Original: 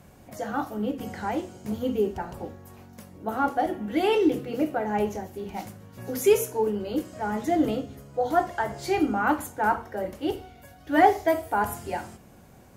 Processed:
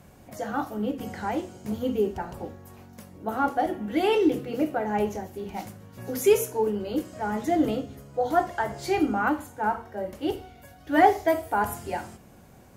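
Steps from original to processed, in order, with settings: 9.29–10.13 harmonic-percussive split percussive -12 dB

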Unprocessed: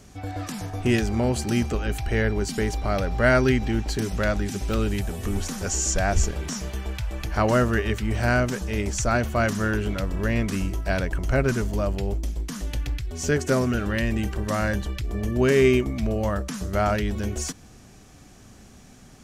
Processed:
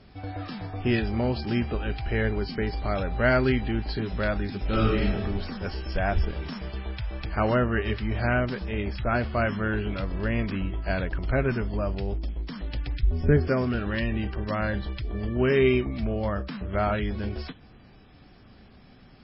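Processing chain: 4.61–5.21 reverb throw, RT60 0.81 s, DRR -4.5 dB; 13.03–13.48 tilt -3 dB/oct; gain -2.5 dB; MP3 16 kbps 12000 Hz

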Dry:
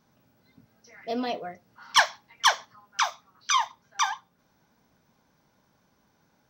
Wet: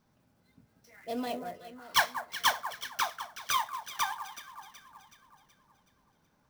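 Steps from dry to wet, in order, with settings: low shelf 64 Hz +11 dB; echo with dull and thin repeats by turns 0.187 s, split 1500 Hz, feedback 69%, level -9 dB; clock jitter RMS 0.02 ms; gain -5.5 dB

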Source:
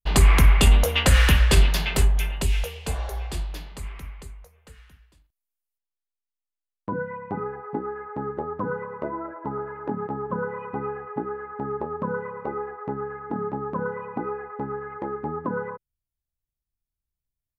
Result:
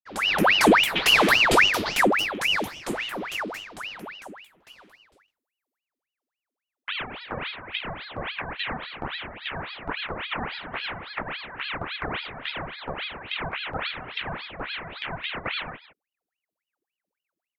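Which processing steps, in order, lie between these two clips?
opening faded in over 0.67 s; speakerphone echo 0.16 s, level -15 dB; ring modulator with a swept carrier 1600 Hz, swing 85%, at 3.6 Hz

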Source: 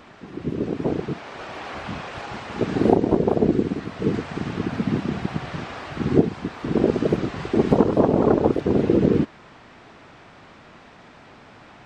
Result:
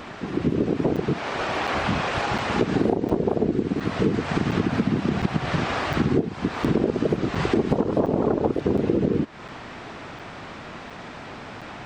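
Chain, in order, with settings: compressor 8:1, threshold -27 dBFS, peak gain reduction 17.5 dB; crackling interface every 0.71 s, samples 256, zero, from 0.96; gain +9 dB

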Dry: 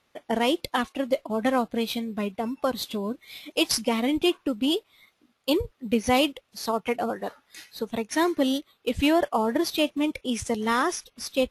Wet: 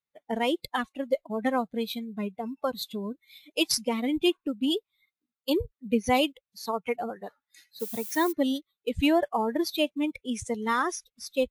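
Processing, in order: per-bin expansion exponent 1.5; 7.79–8.31 added noise violet -39 dBFS

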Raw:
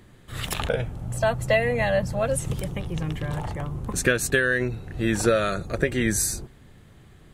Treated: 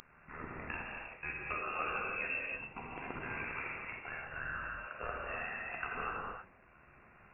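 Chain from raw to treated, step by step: tracing distortion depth 0.35 ms; Chebyshev high-pass 470 Hz, order 5; differentiator; limiter -19.5 dBFS, peak gain reduction 10 dB; compressor 12:1, threshold -46 dBFS, peak gain reduction 19 dB; AM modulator 77 Hz, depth 70%; non-linear reverb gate 0.35 s flat, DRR -3.5 dB; inverted band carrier 3200 Hz; gain +13.5 dB

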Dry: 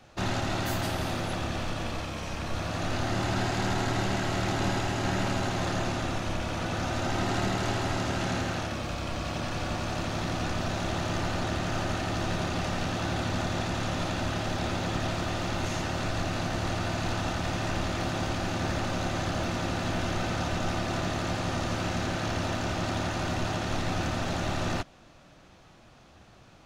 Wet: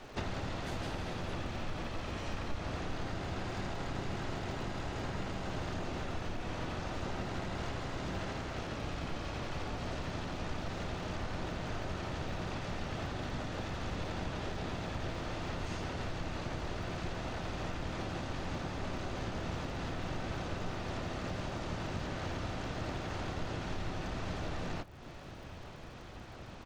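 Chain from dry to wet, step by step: LPF 7100 Hz 12 dB/oct; compressor 12:1, threshold -41 dBFS, peak gain reduction 18 dB; dark delay 0.892 s, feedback 65%, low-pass 2100 Hz, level -21 dB; harmoniser -12 st -2 dB, -5 st -3 dB, +4 st -10 dB; crackle 160/s -56 dBFS; gain +2.5 dB

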